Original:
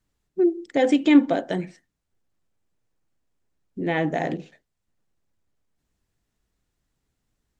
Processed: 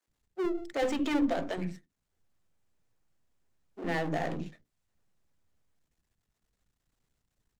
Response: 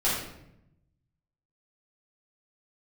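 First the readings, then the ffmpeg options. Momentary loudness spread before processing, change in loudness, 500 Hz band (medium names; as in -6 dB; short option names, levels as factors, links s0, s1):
16 LU, -10.5 dB, -9.0 dB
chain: -filter_complex "[0:a]aeval=exprs='if(lt(val(0),0),0.251*val(0),val(0))':c=same,aeval=exprs='(tanh(7.94*val(0)+0.6)-tanh(0.6))/7.94':c=same,acrossover=split=320[s0][s1];[s0]adelay=70[s2];[s2][s1]amix=inputs=2:normalize=0,volume=1.5"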